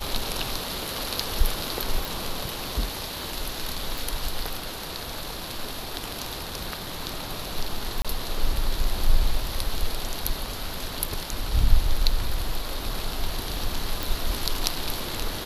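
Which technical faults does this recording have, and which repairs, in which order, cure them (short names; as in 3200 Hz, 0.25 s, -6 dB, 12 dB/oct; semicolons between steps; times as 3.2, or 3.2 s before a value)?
2.05 pop
3.98 pop
8.02–8.05 gap 26 ms
14.03 pop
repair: de-click; interpolate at 8.02, 26 ms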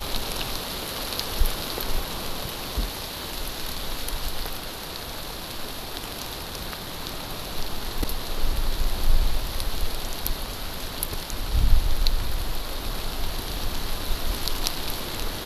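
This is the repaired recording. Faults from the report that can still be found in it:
none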